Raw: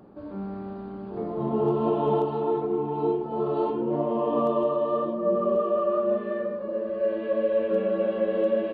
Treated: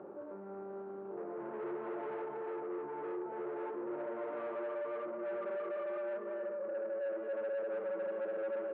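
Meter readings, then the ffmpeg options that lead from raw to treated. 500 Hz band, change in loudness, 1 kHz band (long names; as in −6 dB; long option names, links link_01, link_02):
−13.0 dB, −14.0 dB, −14.5 dB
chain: -af "asoftclip=type=tanh:threshold=-31dB,alimiter=level_in=18dB:limit=-24dB:level=0:latency=1,volume=-18dB,highpass=240,equalizer=frequency=260:width_type=q:width=4:gain=-8,equalizer=frequency=370:width_type=q:width=4:gain=10,equalizer=frequency=550:width_type=q:width=4:gain=8,equalizer=frequency=900:width_type=q:width=4:gain=4,equalizer=frequency=1400:width_type=q:width=4:gain=6,lowpass=frequency=2400:width=0.5412,lowpass=frequency=2400:width=1.3066,volume=-1dB"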